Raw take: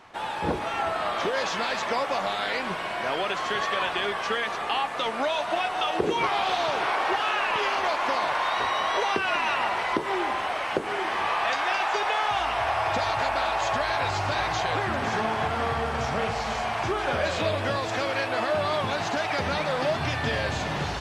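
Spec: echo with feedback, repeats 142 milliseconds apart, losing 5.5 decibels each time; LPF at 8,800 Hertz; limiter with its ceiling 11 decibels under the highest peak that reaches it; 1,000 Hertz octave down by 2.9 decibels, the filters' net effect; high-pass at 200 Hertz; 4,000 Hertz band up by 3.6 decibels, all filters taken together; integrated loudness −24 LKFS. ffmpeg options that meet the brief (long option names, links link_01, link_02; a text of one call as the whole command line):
ffmpeg -i in.wav -af "highpass=200,lowpass=8800,equalizer=frequency=1000:width_type=o:gain=-4,equalizer=frequency=4000:width_type=o:gain=5,alimiter=limit=-20dB:level=0:latency=1,aecho=1:1:142|284|426|568|710|852|994:0.531|0.281|0.149|0.079|0.0419|0.0222|0.0118,volume=3.5dB" out.wav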